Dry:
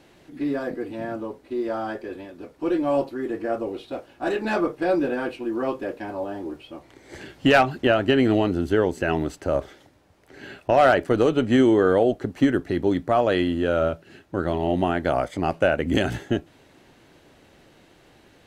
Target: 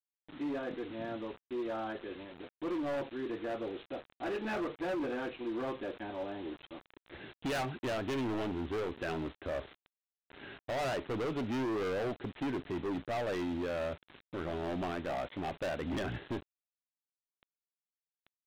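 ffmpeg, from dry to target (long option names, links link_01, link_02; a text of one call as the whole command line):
ffmpeg -i in.wav -af "aresample=8000,acrusher=bits=6:mix=0:aa=0.000001,aresample=44100,asoftclip=type=hard:threshold=-23dB,volume=-9dB" out.wav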